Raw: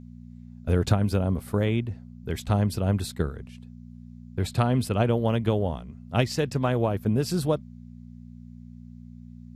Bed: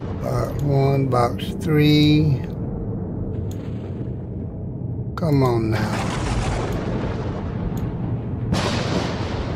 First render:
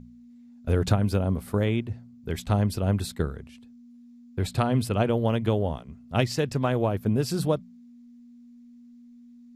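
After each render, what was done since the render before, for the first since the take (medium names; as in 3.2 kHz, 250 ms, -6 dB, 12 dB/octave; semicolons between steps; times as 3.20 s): de-hum 60 Hz, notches 3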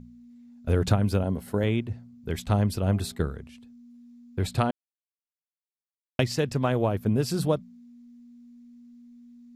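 1.23–1.64 s: comb of notches 1.2 kHz; 2.71–3.25 s: de-hum 134.7 Hz, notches 9; 4.71–6.19 s: mute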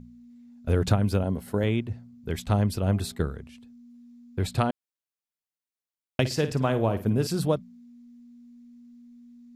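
6.20–7.27 s: flutter echo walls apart 9.1 m, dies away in 0.28 s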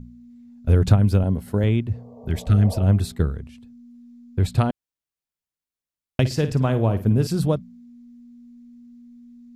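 1.94–2.80 s: spectral replace 420–1200 Hz both; bass shelf 190 Hz +10.5 dB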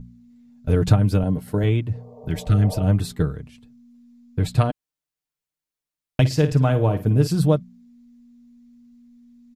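comb 6.6 ms, depth 57%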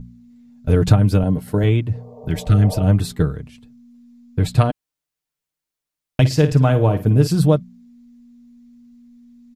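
trim +3.5 dB; peak limiter -2 dBFS, peak gain reduction 2 dB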